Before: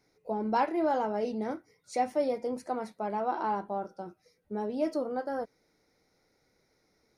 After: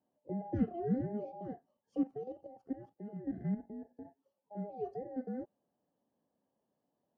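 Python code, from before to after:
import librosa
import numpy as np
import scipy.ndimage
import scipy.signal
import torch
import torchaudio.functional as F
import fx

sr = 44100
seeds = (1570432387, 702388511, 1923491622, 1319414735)

y = fx.band_invert(x, sr, width_hz=1000)
y = fx.level_steps(y, sr, step_db=10, at=(2.03, 4.05))
y = fx.bandpass_q(y, sr, hz=210.0, q=1.6)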